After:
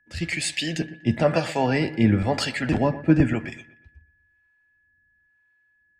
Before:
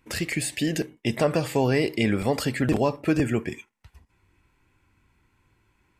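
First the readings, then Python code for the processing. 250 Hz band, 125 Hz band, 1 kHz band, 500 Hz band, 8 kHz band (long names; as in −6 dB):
+2.5 dB, +3.5 dB, +2.5 dB, −0.5 dB, −0.5 dB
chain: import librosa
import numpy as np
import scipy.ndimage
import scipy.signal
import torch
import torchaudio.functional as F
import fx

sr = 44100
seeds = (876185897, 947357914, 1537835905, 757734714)

p1 = fx.air_absorb(x, sr, metres=87.0)
p2 = fx.notch(p1, sr, hz=1100.0, q=8.5)
p3 = fx.harmonic_tremolo(p2, sr, hz=1.0, depth_pct=70, crossover_hz=450.0)
p4 = fx.doubler(p3, sr, ms=12.0, db=-12)
p5 = p4 + 10.0 ** (-50.0 / 20.0) * np.sin(2.0 * np.pi * 1700.0 * np.arange(len(p4)) / sr)
p6 = fx.peak_eq(p5, sr, hz=420.0, db=-7.5, octaves=0.56)
p7 = p6 + fx.echo_wet_lowpass(p6, sr, ms=121, feedback_pct=51, hz=2500.0, wet_db=-14, dry=0)
p8 = fx.band_widen(p7, sr, depth_pct=70)
y = F.gain(torch.from_numpy(p8), 6.0).numpy()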